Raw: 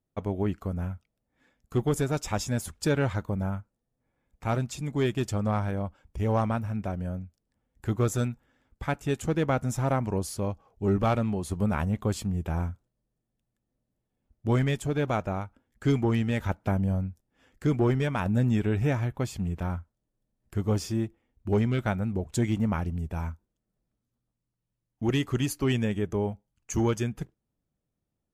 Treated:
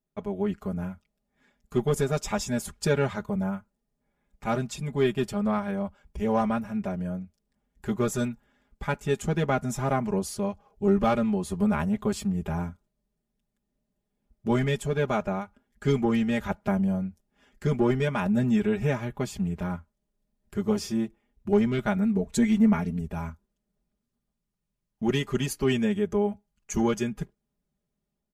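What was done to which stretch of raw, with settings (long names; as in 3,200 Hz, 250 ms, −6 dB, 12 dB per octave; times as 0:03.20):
0:04.75–0:05.72: parametric band 6,400 Hz −7 dB 0.53 octaves
0:21.96–0:23.01: comb filter 4.4 ms
whole clip: high-shelf EQ 11,000 Hz −3 dB; automatic gain control gain up to 3.5 dB; comb filter 4.9 ms, depth 93%; level −4.5 dB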